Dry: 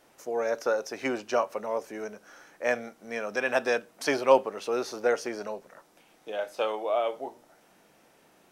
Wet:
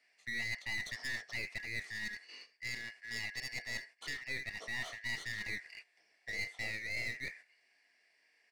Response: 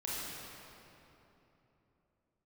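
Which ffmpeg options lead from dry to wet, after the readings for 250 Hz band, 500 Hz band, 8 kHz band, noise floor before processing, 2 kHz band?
−18.5 dB, −30.0 dB, −6.0 dB, −62 dBFS, −2.5 dB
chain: -filter_complex "[0:a]afftfilt=real='real(if(lt(b,272),68*(eq(floor(b/68),0)*2+eq(floor(b/68),1)*0+eq(floor(b/68),2)*3+eq(floor(b/68),3)*1)+mod(b,68),b),0)':imag='imag(if(lt(b,272),68*(eq(floor(b/68),0)*2+eq(floor(b/68),1)*0+eq(floor(b/68),2)*3+eq(floor(b/68),3)*1)+mod(b,68),b),0)':win_size=2048:overlap=0.75,aecho=1:1:79:0.0708,areverse,acompressor=threshold=-33dB:ratio=10,areverse,highpass=260,equalizer=frequency=450:width_type=q:width=4:gain=8,equalizer=frequency=690:width_type=q:width=4:gain=10,equalizer=frequency=6500:width_type=q:width=4:gain=-8,lowpass=frequency=8200:width=0.5412,lowpass=frequency=8200:width=1.3066,bandreject=frequency=3800:width=22,acrossover=split=1000[link_01][link_02];[link_01]flanger=delay=18:depth=3.5:speed=0.31[link_03];[link_02]aeval=exprs='clip(val(0),-1,0.00631)':channel_layout=same[link_04];[link_03][link_04]amix=inputs=2:normalize=0,agate=range=-12dB:threshold=-52dB:ratio=16:detection=peak,adynamicequalizer=threshold=0.00282:dfrequency=3000:dqfactor=1.4:tfrequency=3000:tqfactor=1.4:attack=5:release=100:ratio=0.375:range=2:mode=cutabove:tftype=bell,alimiter=level_in=4.5dB:limit=-24dB:level=0:latency=1:release=350,volume=-4.5dB,volume=1.5dB"

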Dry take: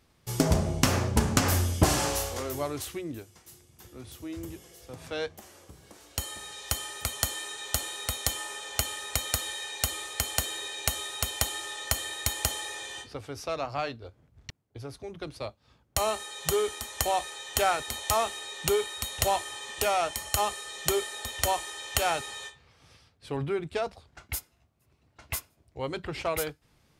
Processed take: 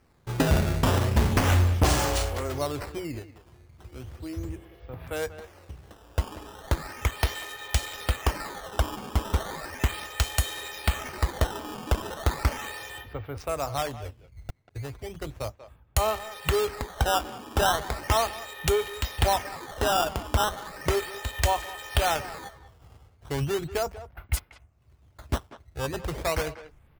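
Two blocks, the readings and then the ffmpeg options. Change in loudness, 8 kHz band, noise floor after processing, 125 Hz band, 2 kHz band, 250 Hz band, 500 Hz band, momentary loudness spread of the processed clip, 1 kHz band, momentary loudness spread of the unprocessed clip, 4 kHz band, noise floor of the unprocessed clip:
+1.5 dB, −5.0 dB, −59 dBFS, +6.0 dB, +2.0 dB, +1.5 dB, +2.0 dB, 17 LU, +2.5 dB, 15 LU, −1.0 dB, −66 dBFS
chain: -filter_complex "[0:a]asubboost=boost=4:cutoff=98,acrossover=split=3100[link_01][link_02];[link_02]aeval=exprs='sgn(val(0))*max(abs(val(0))-0.00841,0)':channel_layout=same[link_03];[link_01][link_03]amix=inputs=2:normalize=0,acrusher=samples=12:mix=1:aa=0.000001:lfo=1:lforange=19.2:lforate=0.36,asoftclip=type=hard:threshold=-18dB,asplit=2[link_04][link_05];[link_05]adelay=190,highpass=300,lowpass=3400,asoftclip=type=hard:threshold=-28dB,volume=-13dB[link_06];[link_04][link_06]amix=inputs=2:normalize=0,volume=3dB"

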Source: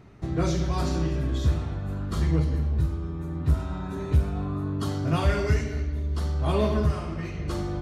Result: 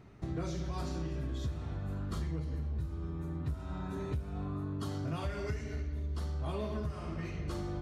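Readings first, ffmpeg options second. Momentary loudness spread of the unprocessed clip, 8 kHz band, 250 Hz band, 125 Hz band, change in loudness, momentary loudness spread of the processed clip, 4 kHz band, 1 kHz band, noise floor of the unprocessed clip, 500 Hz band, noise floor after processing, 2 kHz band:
8 LU, −11.0 dB, −10.0 dB, −11.0 dB, −11.0 dB, 3 LU, −11.0 dB, −11.0 dB, −34 dBFS, −11.0 dB, −42 dBFS, −11.0 dB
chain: -af "acompressor=threshold=-28dB:ratio=6,volume=-5dB"

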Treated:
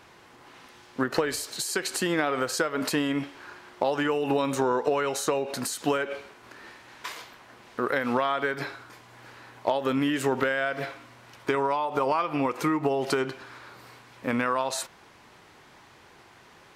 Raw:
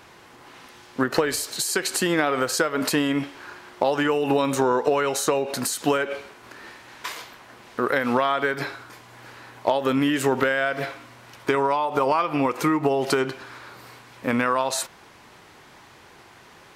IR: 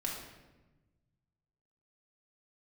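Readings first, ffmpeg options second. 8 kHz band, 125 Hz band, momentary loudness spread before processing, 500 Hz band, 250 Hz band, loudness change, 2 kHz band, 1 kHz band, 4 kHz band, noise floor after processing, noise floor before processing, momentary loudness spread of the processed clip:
−5.5 dB, −4.0 dB, 19 LU, −4.0 dB, −4.0 dB, −4.0 dB, −4.0 dB, −4.0 dB, −4.5 dB, −54 dBFS, −50 dBFS, 19 LU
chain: -af "highshelf=frequency=9900:gain=-4,volume=-4dB"

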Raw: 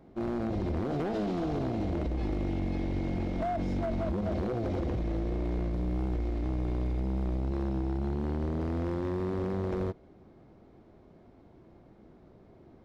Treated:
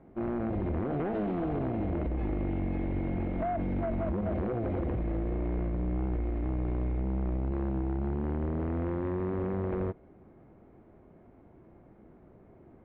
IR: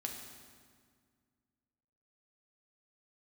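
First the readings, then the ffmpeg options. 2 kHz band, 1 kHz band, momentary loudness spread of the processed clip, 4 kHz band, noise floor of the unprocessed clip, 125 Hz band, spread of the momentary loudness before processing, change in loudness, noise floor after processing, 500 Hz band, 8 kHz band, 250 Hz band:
−0.5 dB, 0.0 dB, 1 LU, below −10 dB, −57 dBFS, 0.0 dB, 1 LU, 0.0 dB, −57 dBFS, 0.0 dB, can't be measured, 0.0 dB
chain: -af "lowpass=frequency=2500:width=0.5412,lowpass=frequency=2500:width=1.3066"

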